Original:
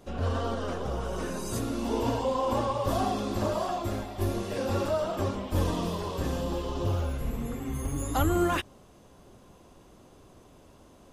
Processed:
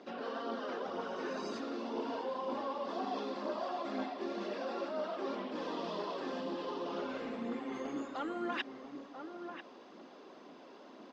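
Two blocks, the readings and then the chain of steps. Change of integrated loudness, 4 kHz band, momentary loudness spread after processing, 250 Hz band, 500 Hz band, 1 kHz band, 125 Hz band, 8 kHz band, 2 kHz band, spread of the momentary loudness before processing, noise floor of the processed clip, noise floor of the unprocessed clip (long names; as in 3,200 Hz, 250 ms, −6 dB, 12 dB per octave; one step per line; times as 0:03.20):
−9.0 dB, −7.0 dB, 16 LU, −8.0 dB, −7.5 dB, −7.5 dB, −26.5 dB, below −15 dB, −5.0 dB, 6 LU, −55 dBFS, −55 dBFS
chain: elliptic band-pass filter 240–4,900 Hz, stop band 40 dB
parametric band 1,800 Hz +3 dB 0.68 octaves
reversed playback
downward compressor 6 to 1, threshold −39 dBFS, peak gain reduction 15 dB
reversed playback
phase shifter 2 Hz, delay 2.6 ms, feedback 31%
slap from a distant wall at 170 metres, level −7 dB
level +2 dB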